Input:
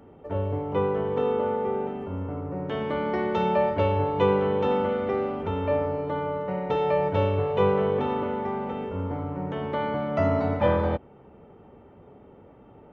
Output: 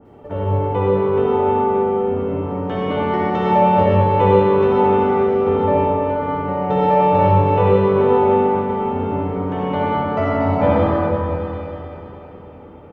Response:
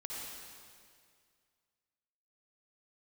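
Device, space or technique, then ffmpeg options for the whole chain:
stairwell: -filter_complex "[0:a]aecho=1:1:304|608|912|1216|1520|1824|2128:0.224|0.134|0.0806|0.0484|0.029|0.0174|0.0104[a];[1:a]atrim=start_sample=2205[b];[a][b]afir=irnorm=-1:irlink=0,adynamicequalizer=threshold=0.01:dfrequency=1900:dqfactor=0.7:tfrequency=1900:tqfactor=0.7:attack=5:release=100:ratio=0.375:range=3:mode=cutabove:tftype=highshelf,volume=9dB"

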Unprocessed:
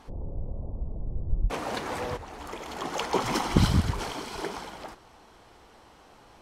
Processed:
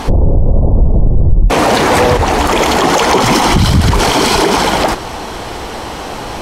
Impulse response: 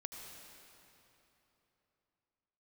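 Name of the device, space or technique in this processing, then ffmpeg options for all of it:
mastering chain: -af "equalizer=f=1.3k:t=o:w=0.77:g=-2.5,acompressor=threshold=-31dB:ratio=2.5,asoftclip=type=tanh:threshold=-20.5dB,alimiter=level_in=32.5dB:limit=-1dB:release=50:level=0:latency=1,volume=-1dB"

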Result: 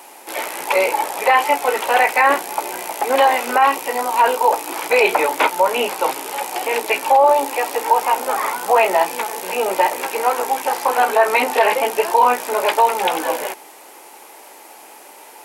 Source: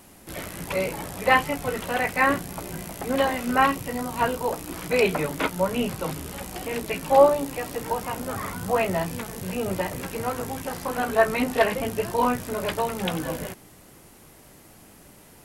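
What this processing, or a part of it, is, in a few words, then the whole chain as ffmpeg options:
laptop speaker: -af "highpass=f=370:w=0.5412,highpass=f=370:w=1.3066,equalizer=f=870:t=o:w=0.32:g=12,equalizer=f=2.4k:t=o:w=0.36:g=4.5,alimiter=limit=-13.5dB:level=0:latency=1:release=45,volume=9dB"

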